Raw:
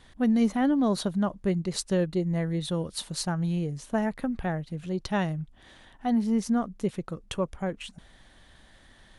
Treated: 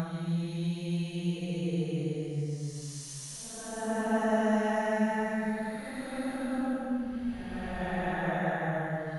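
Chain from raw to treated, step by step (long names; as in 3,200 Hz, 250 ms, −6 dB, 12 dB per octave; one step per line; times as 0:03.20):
extreme stretch with random phases 7.6×, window 0.25 s, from 0:03.39
spectral tilt +1.5 dB per octave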